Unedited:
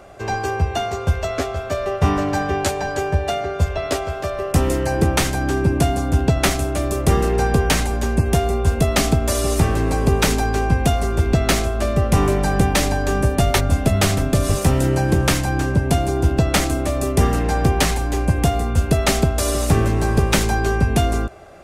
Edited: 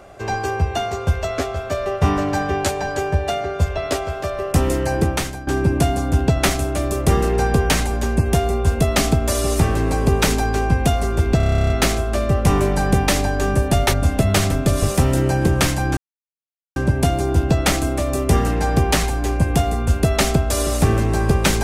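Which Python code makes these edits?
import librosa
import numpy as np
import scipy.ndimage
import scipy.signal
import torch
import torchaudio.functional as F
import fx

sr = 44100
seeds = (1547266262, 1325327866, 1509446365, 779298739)

y = fx.edit(x, sr, fx.fade_out_to(start_s=4.95, length_s=0.52, floor_db=-14.5),
    fx.stutter(start_s=11.37, slice_s=0.03, count=12),
    fx.insert_silence(at_s=15.64, length_s=0.79), tone=tone)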